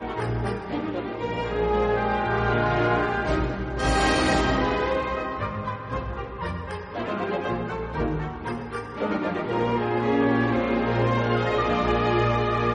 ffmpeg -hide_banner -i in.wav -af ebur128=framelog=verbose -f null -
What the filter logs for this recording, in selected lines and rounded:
Integrated loudness:
  I:         -25.1 LUFS
  Threshold: -35.1 LUFS
Loudness range:
  LRA:         6.7 LU
  Threshold: -45.3 LUFS
  LRA low:   -29.8 LUFS
  LRA high:  -23.1 LUFS